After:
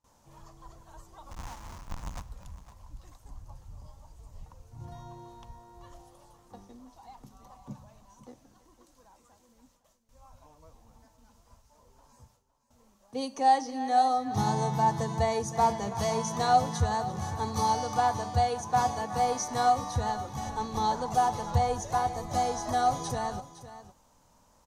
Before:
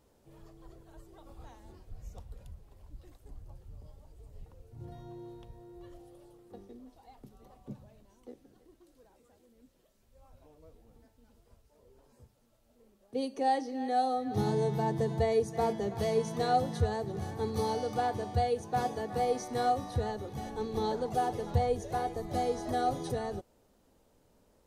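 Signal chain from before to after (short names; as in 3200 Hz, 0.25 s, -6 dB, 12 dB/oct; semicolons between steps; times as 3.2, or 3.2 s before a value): 1.31–2.22 half-waves squared off; gate with hold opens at -58 dBFS; fifteen-band EQ 400 Hz -11 dB, 1000 Hz +11 dB, 6300 Hz +10 dB; echo 0.51 s -14.5 dB; gain +2.5 dB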